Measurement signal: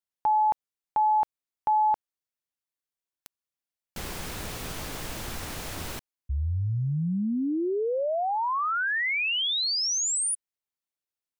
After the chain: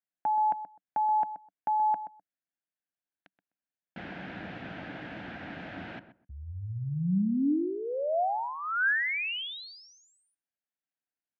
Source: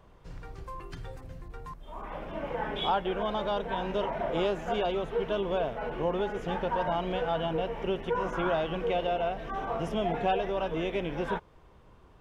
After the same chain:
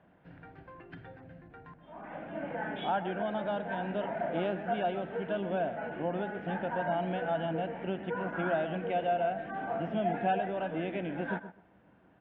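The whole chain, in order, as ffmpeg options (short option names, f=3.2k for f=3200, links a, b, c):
-filter_complex "[0:a]highpass=130,equalizer=f=190:t=q:w=4:g=7,equalizer=f=290:t=q:w=4:g=7,equalizer=f=420:t=q:w=4:g=-6,equalizer=f=700:t=q:w=4:g=6,equalizer=f=1.1k:t=q:w=4:g=-9,equalizer=f=1.6k:t=q:w=4:g=8,lowpass=f=2.9k:w=0.5412,lowpass=f=2.9k:w=1.3066,asplit=2[a][b];[b]adelay=127,lowpass=f=1.3k:p=1,volume=-11dB,asplit=2[c][d];[d]adelay=127,lowpass=f=1.3k:p=1,volume=0.18[e];[a][c][e]amix=inputs=3:normalize=0,volume=-4.5dB"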